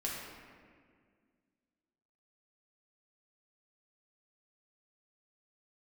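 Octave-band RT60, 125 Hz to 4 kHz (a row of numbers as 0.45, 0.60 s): 2.3, 2.6, 2.1, 1.7, 1.7, 1.2 s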